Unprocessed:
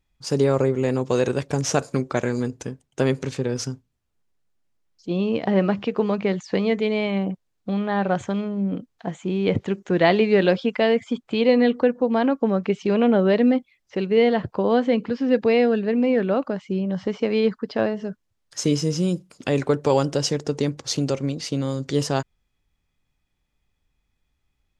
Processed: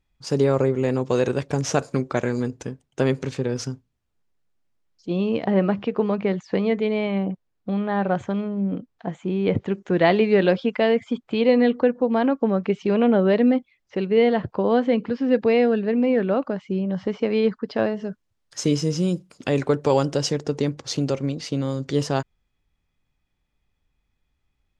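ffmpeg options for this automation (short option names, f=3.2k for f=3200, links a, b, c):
-af "asetnsamples=n=441:p=0,asendcmd='5.44 lowpass f 2400;9.72 lowpass f 3800;17.69 lowpass f 8100;20.32 lowpass f 4800',lowpass=f=5.6k:p=1"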